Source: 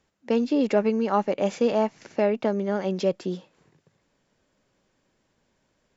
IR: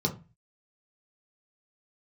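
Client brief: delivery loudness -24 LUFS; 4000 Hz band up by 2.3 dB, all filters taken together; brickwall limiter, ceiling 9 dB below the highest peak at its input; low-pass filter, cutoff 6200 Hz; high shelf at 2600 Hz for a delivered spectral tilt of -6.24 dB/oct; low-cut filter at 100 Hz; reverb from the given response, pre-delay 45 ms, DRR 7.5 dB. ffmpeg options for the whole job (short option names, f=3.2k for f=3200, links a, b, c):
-filter_complex "[0:a]highpass=100,lowpass=6.2k,highshelf=f=2.6k:g=-3,equalizer=f=4k:t=o:g=6.5,alimiter=limit=-18dB:level=0:latency=1,asplit=2[a][b];[1:a]atrim=start_sample=2205,adelay=45[c];[b][c]afir=irnorm=-1:irlink=0,volume=-15dB[d];[a][d]amix=inputs=2:normalize=0,volume=2dB"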